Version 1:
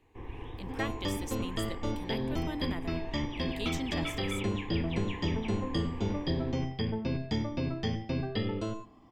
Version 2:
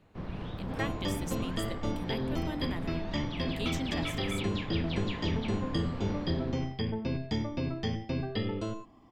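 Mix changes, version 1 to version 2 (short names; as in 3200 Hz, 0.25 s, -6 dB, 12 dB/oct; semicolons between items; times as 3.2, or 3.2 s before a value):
first sound: remove fixed phaser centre 920 Hz, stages 8; reverb: off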